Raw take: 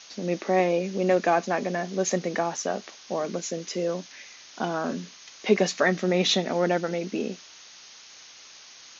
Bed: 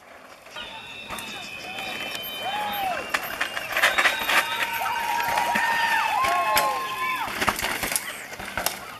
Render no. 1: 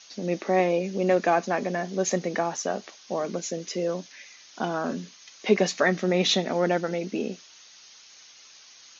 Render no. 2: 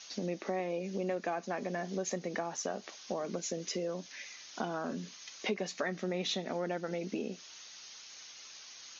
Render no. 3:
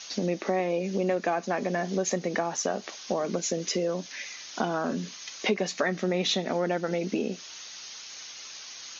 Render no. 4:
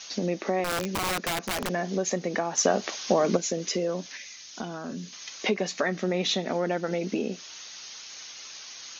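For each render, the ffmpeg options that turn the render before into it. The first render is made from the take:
-af "afftdn=nr=6:nf=-49"
-af "acompressor=threshold=-34dB:ratio=4"
-af "volume=8dB"
-filter_complex "[0:a]asettb=1/sr,asplit=3[a][b][c];[a]atrim=end=0.644[d];[b]atrim=start=0.64:end=1.69,asetpts=PTS-STARTPTS,afade=t=in:d=0.004:c=qsin,afade=t=out:st=1.046:d=0.004:c=qsin,aeval=exprs='(mod(13.3*val(0)+1,2)-1)/13.3':c=same[e];[c]atrim=start=1.686[f];[d][e]acrossfade=d=0.004:c1=hsin:c2=qsin[g];[g][f]acrossfade=d=0.004:c1=qsin:c2=hsin,asettb=1/sr,asplit=3[h][i][j];[h]atrim=end=2.574[k];[i]atrim=start=2.57:end=3.37,asetpts=PTS-STARTPTS,afade=t=in:d=0.004:c=qsin,afade=t=out:st=0.796:d=0.004:c=qsin,acontrast=61[l];[j]atrim=start=3.366[m];[k][l]acrossfade=d=0.004:c1=hsin:c2=qsin[n];[n][m]acrossfade=d=0.004:c1=qsin:c2=hsin,asettb=1/sr,asplit=3[o][p][q];[o]atrim=end=4.174[r];[p]atrim=start=4.17:end=5.13,asetpts=PTS-STARTPTS,afade=t=in:d=0.004:c=qsin,afade=t=out:st=0.956:d=0.004:c=qsin,equalizer=f=820:w=0.31:g=-9.5[s];[q]atrim=start=5.126[t];[r][s]acrossfade=d=0.004:c1=hsin:c2=qsin[u];[u][t]acrossfade=d=0.004:c1=qsin:c2=hsin"

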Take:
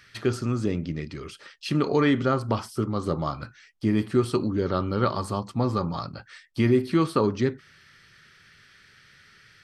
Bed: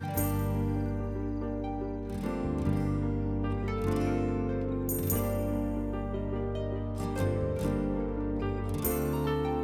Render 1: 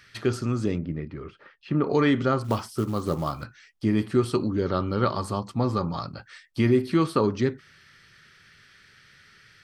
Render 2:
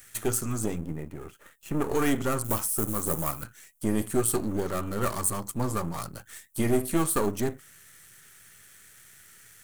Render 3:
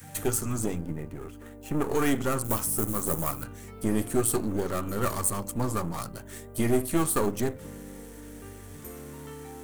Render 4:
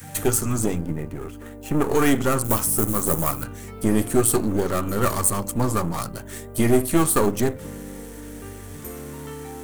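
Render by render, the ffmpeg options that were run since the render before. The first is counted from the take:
-filter_complex "[0:a]asettb=1/sr,asplit=3[a][b][c];[a]atrim=end=0.784[d];[b]atrim=start=0.78:end=1.9,asetpts=PTS-STARTPTS,afade=t=in:d=0.004:c=qsin,afade=t=out:st=1.116:d=0.004:c=qsin,lowpass=1.6k[e];[c]atrim=start=1.896[f];[d][e]acrossfade=d=0.004:c1=hsin:c2=qsin[g];[g][f]acrossfade=d=0.004:c1=qsin:c2=hsin,asettb=1/sr,asplit=3[h][i][j];[h]atrim=end=2.444[k];[i]atrim=start=2.44:end=3.44,asetpts=PTS-STARTPTS,afade=t=in:d=0.004:c=qsin,afade=t=out:st=0.996:d=0.004:c=qsin,acrusher=bits=6:mode=log:mix=0:aa=0.000001[l];[j]atrim=start=3.436[m];[k][l]acrossfade=d=0.004:c1=hsin:c2=qsin[n];[n][m]acrossfade=d=0.004:c1=qsin:c2=hsin"
-af "aeval=exprs='if(lt(val(0),0),0.251*val(0),val(0))':c=same,aexciter=amount=15.9:drive=2.5:freq=7k"
-filter_complex "[1:a]volume=-12.5dB[a];[0:a][a]amix=inputs=2:normalize=0"
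-af "volume=6.5dB"

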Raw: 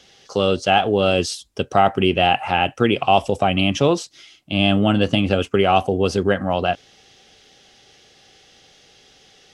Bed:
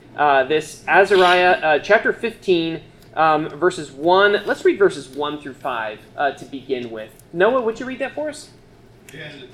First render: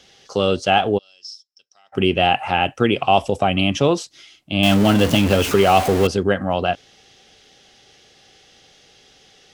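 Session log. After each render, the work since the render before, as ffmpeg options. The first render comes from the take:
-filter_complex "[0:a]asplit=3[a][b][c];[a]afade=t=out:st=0.97:d=0.02[d];[b]bandpass=f=5.3k:t=q:w=18,afade=t=in:st=0.97:d=0.02,afade=t=out:st=1.92:d=0.02[e];[c]afade=t=in:st=1.92:d=0.02[f];[d][e][f]amix=inputs=3:normalize=0,asettb=1/sr,asplit=3[g][h][i];[g]atrim=end=4.634[j];[h]atrim=start=4.63:end=6.07,asetpts=PTS-STARTPTS,afade=t=in:d=0.004:c=qsin,afade=t=out:st=1.436:d=0.004:c=qsin,aeval=exprs='val(0)+0.5*0.112*sgn(val(0))':c=same[k];[i]atrim=start=6.066[l];[j][k]acrossfade=d=0.004:c1=hsin:c2=qsin[m];[m][l]acrossfade=d=0.004:c1=qsin:c2=hsin"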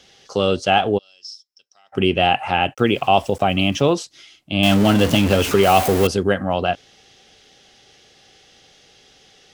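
-filter_complex "[0:a]asplit=3[a][b][c];[a]afade=t=out:st=2.73:d=0.02[d];[b]aeval=exprs='val(0)*gte(abs(val(0)),0.00944)':c=same,afade=t=in:st=2.73:d=0.02,afade=t=out:st=3.94:d=0.02[e];[c]afade=t=in:st=3.94:d=0.02[f];[d][e][f]amix=inputs=3:normalize=0,asettb=1/sr,asplit=3[g][h][i];[g]atrim=end=5.634[j];[h]atrim=start=5.63:end=6.41,asetpts=PTS-STARTPTS,afade=t=in:d=0.004:c=qsin,afade=t=out:st=0.776:d=0.004:c=qsin,highshelf=f=10k:g=11[k];[i]atrim=start=6.406[l];[j][k]acrossfade=d=0.004:c1=hsin:c2=qsin[m];[m][l]acrossfade=d=0.004:c1=qsin:c2=hsin"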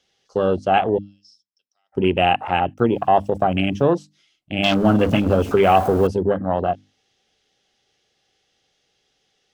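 -af "afwtdn=0.0794,bandreject=f=50:t=h:w=6,bandreject=f=100:t=h:w=6,bandreject=f=150:t=h:w=6,bandreject=f=200:t=h:w=6,bandreject=f=250:t=h:w=6,bandreject=f=300:t=h:w=6"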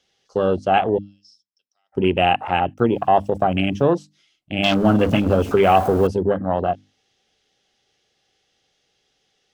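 -af anull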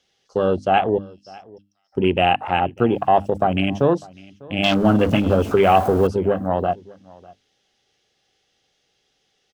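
-af "aecho=1:1:599:0.0668"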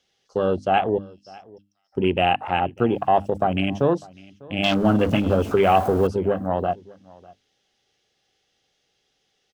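-af "volume=-2.5dB"

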